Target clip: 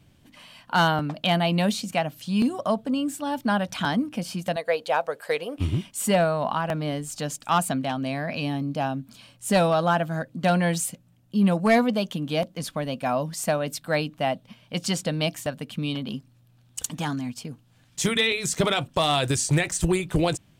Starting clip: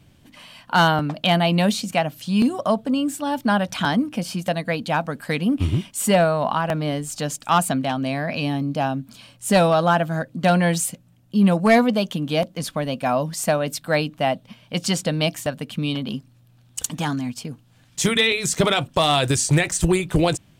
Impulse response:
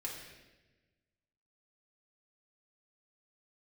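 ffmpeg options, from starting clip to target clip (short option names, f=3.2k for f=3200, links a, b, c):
-filter_complex "[0:a]asettb=1/sr,asplit=3[a][b][c];[a]atrim=end=4.564[d];[b]atrim=start=4.56:end=5.58,asetpts=PTS-STARTPTS,afade=t=in:d=0.004:c=qsin,afade=t=out:st=1.016:d=0.004:c=qsin,lowshelf=f=330:t=q:w=3:g=-12.5[e];[c]atrim=start=5.576[f];[d][e]acrossfade=d=0.004:c1=hsin:c2=qsin[g];[g][f]acrossfade=d=0.004:c1=qsin:c2=hsin,volume=-4dB"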